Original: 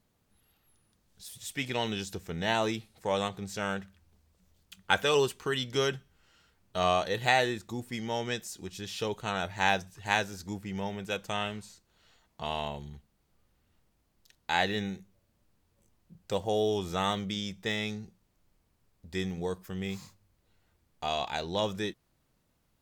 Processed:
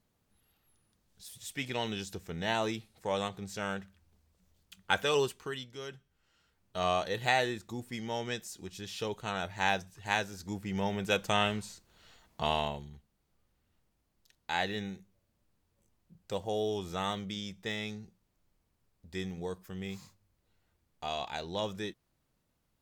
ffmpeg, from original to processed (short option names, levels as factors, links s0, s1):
-af "volume=7.5,afade=t=out:st=5.22:d=0.55:silence=0.223872,afade=t=in:st=5.77:d=1.21:silence=0.223872,afade=t=in:st=10.35:d=0.77:silence=0.421697,afade=t=out:st=12.46:d=0.42:silence=0.354813"